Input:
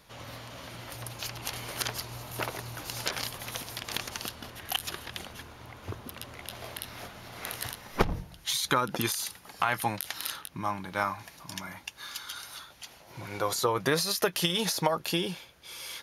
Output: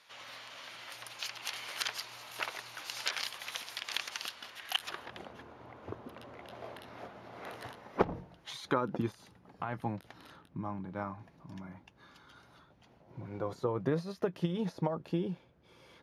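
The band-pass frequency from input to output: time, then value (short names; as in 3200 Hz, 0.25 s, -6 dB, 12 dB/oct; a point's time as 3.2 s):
band-pass, Q 0.63
4.68 s 2600 Hz
5.17 s 480 Hz
8.63 s 480 Hz
9.07 s 180 Hz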